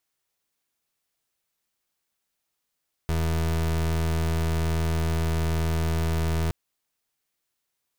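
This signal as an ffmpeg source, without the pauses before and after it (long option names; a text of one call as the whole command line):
ffmpeg -f lavfi -i "aevalsrc='0.0596*(2*lt(mod(81.2*t,1),0.3)-1)':duration=3.42:sample_rate=44100" out.wav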